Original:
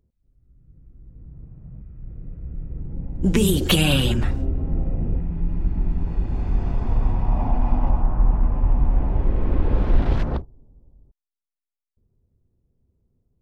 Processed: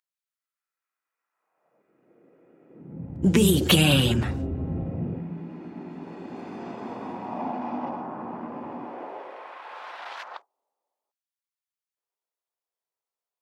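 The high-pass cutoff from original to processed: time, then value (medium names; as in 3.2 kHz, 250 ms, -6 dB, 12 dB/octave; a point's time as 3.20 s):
high-pass 24 dB/octave
1.31 s 1.2 kHz
1.94 s 350 Hz
2.66 s 350 Hz
3.12 s 84 Hz
4.84 s 84 Hz
5.54 s 230 Hz
8.71 s 230 Hz
9.57 s 840 Hz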